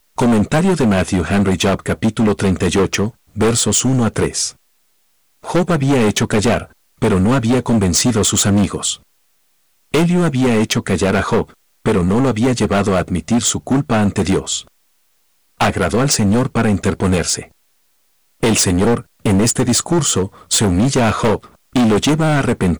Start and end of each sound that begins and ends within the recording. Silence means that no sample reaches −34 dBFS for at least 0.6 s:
0:05.44–0:08.96
0:09.94–0:14.67
0:15.60–0:17.45

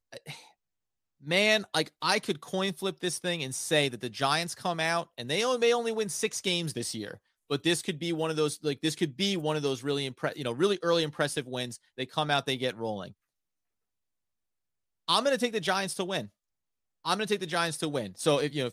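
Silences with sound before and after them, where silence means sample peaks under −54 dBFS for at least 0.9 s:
0:13.12–0:15.08

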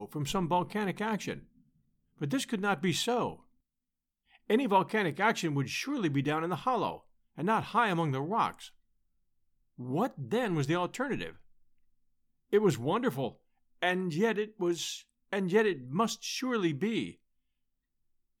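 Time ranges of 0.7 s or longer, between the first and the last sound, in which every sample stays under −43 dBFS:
0:01.39–0:02.21
0:03.35–0:04.50
0:08.68–0:09.79
0:11.32–0:12.53

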